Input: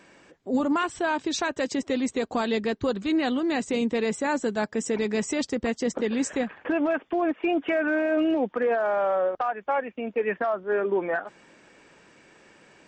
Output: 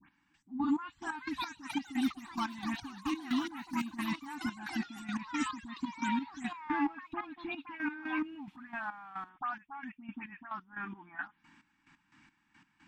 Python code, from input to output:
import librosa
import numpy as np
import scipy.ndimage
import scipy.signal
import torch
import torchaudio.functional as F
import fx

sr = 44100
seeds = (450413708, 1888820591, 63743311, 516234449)

y = fx.spec_delay(x, sr, highs='late', ms=167)
y = fx.high_shelf(y, sr, hz=4800.0, db=-11.5)
y = fx.echo_pitch(y, sr, ms=696, semitones=7, count=3, db_per_echo=-6.0)
y = fx.step_gate(y, sr, bpm=177, pattern='x...x..x', floor_db=-12.0, edge_ms=4.5)
y = scipy.signal.sosfilt(scipy.signal.cheby1(3, 1.0, [290.0, 870.0], 'bandstop', fs=sr, output='sos'), y)
y = F.gain(torch.from_numpy(y), -3.5).numpy()